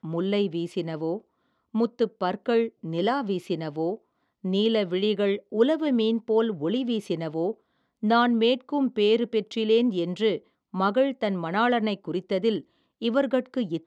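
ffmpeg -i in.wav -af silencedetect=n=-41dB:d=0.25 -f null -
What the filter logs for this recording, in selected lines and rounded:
silence_start: 1.19
silence_end: 1.74 | silence_duration: 0.56
silence_start: 3.96
silence_end: 4.44 | silence_duration: 0.49
silence_start: 7.52
silence_end: 8.03 | silence_duration: 0.50
silence_start: 10.38
silence_end: 10.74 | silence_duration: 0.36
silence_start: 12.61
silence_end: 13.02 | silence_duration: 0.40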